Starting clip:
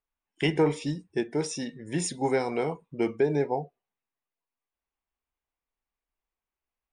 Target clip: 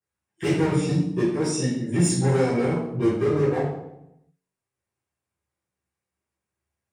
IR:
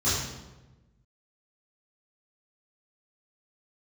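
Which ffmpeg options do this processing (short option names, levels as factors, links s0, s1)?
-filter_complex "[0:a]bandreject=f=90.06:t=h:w=4,bandreject=f=180.12:t=h:w=4,bandreject=f=270.18:t=h:w=4,bandreject=f=360.24:t=h:w=4,bandreject=f=450.3:t=h:w=4,bandreject=f=540.36:t=h:w=4,bandreject=f=630.42:t=h:w=4,volume=21.1,asoftclip=hard,volume=0.0473[s0];[1:a]atrim=start_sample=2205,asetrate=61740,aresample=44100[s1];[s0][s1]afir=irnorm=-1:irlink=0,volume=0.562"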